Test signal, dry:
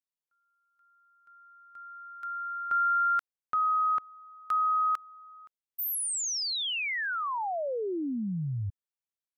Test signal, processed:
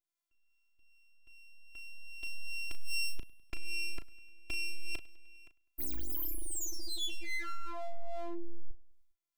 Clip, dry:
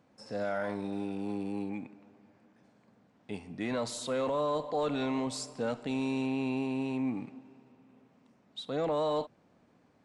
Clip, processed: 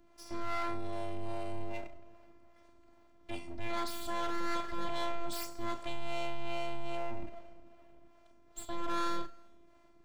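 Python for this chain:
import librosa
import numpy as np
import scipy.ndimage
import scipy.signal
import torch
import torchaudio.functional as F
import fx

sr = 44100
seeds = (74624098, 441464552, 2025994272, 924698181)

p1 = fx.peak_eq(x, sr, hz=100.0, db=12.0, octaves=1.3)
p2 = fx.robotise(p1, sr, hz=342.0)
p3 = np.abs(p2)
p4 = fx.quant_float(p3, sr, bits=8)
p5 = fx.harmonic_tremolo(p4, sr, hz=2.5, depth_pct=50, crossover_hz=440.0)
p6 = 10.0 ** (-34.5 / 20.0) * np.tanh(p5 / 10.0 ** (-34.5 / 20.0))
p7 = fx.doubler(p6, sr, ms=36.0, db=-10.5)
p8 = p7 + fx.echo_feedback(p7, sr, ms=101, feedback_pct=58, wet_db=-23, dry=0)
y = p8 * 10.0 ** (5.5 / 20.0)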